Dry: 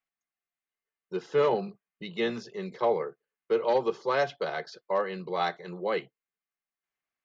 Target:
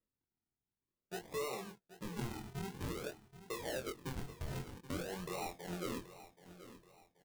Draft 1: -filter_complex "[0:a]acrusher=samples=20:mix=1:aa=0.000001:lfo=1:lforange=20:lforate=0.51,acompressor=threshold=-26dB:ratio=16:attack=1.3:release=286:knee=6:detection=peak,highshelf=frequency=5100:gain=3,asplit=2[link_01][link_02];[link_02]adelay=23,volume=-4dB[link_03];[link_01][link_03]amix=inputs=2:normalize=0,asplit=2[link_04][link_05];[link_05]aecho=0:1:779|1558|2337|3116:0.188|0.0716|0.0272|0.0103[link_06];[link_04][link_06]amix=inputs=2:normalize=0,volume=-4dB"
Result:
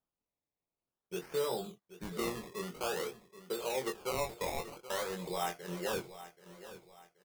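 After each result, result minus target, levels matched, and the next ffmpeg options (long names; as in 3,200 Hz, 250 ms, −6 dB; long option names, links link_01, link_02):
sample-and-hold swept by an LFO: distortion −16 dB; downward compressor: peak gain reduction −7 dB
-filter_complex "[0:a]acrusher=samples=54:mix=1:aa=0.000001:lfo=1:lforange=54:lforate=0.51,acompressor=threshold=-26dB:ratio=16:attack=1.3:release=286:knee=6:detection=peak,highshelf=frequency=5100:gain=3,asplit=2[link_01][link_02];[link_02]adelay=23,volume=-4dB[link_03];[link_01][link_03]amix=inputs=2:normalize=0,asplit=2[link_04][link_05];[link_05]aecho=0:1:779|1558|2337|3116:0.188|0.0716|0.0272|0.0103[link_06];[link_04][link_06]amix=inputs=2:normalize=0,volume=-4dB"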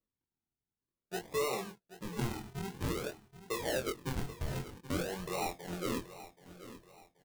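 downward compressor: peak gain reduction −6.5 dB
-filter_complex "[0:a]acrusher=samples=54:mix=1:aa=0.000001:lfo=1:lforange=54:lforate=0.51,acompressor=threshold=-33dB:ratio=16:attack=1.3:release=286:knee=6:detection=peak,highshelf=frequency=5100:gain=3,asplit=2[link_01][link_02];[link_02]adelay=23,volume=-4dB[link_03];[link_01][link_03]amix=inputs=2:normalize=0,asplit=2[link_04][link_05];[link_05]aecho=0:1:779|1558|2337|3116:0.188|0.0716|0.0272|0.0103[link_06];[link_04][link_06]amix=inputs=2:normalize=0,volume=-4dB"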